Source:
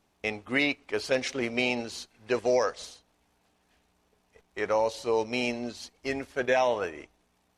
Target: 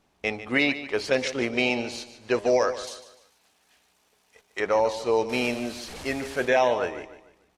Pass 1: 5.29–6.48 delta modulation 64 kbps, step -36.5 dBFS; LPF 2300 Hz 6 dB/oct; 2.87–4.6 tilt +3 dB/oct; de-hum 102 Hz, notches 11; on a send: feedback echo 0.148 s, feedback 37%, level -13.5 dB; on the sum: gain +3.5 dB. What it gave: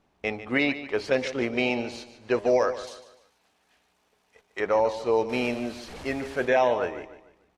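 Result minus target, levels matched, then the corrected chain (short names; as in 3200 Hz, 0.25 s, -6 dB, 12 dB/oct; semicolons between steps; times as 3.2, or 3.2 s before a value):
8000 Hz band -6.5 dB
5.29–6.48 delta modulation 64 kbps, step -36.5 dBFS; LPF 7700 Hz 6 dB/oct; 2.87–4.6 tilt +3 dB/oct; de-hum 102 Hz, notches 11; on a send: feedback echo 0.148 s, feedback 37%, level -13.5 dB; on the sum: gain +3.5 dB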